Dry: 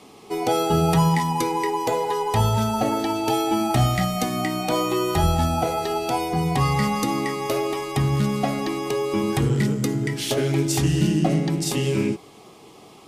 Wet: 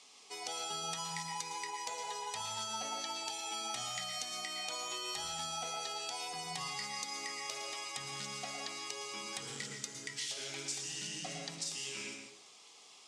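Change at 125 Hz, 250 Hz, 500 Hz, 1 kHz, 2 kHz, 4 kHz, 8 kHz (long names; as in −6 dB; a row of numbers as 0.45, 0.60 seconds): −33.0, −31.0, −25.0, −18.0, −11.5, −7.0, −6.0 decibels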